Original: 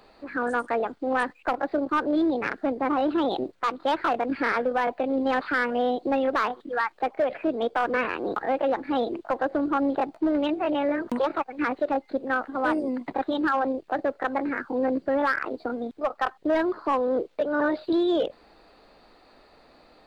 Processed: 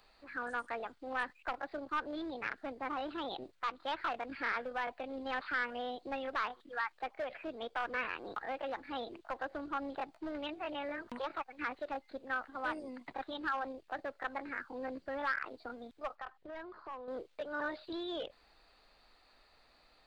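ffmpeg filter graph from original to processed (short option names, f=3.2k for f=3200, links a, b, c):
-filter_complex "[0:a]asettb=1/sr,asplit=3[a][b][c];[a]atrim=end=16.154[d];[b]atrim=start=16.15:end=17.08,asetpts=PTS-STARTPTS,afade=t=in:d=0.004:c=qsin,afade=t=out:st=0.926:d=0.004:c=qsin,lowpass=f=2k:p=1,bandreject=f=290:w=9.6,acompressor=threshold=-28dB:ratio=6:attack=3.2:release=140:knee=1:detection=peak[e];[c]atrim=start=17.076[f];[d][e]acrossfade=d=0.004:c1=hsin:c2=qsin[g];[g][f]acrossfade=d=0.004:c1=qsin:c2=hsin,acrossover=split=4900[h][i];[i]acompressor=threshold=-60dB:ratio=4:attack=1:release=60[j];[h][j]amix=inputs=2:normalize=0,equalizer=f=310:w=0.36:g=-13.5,volume=-5dB"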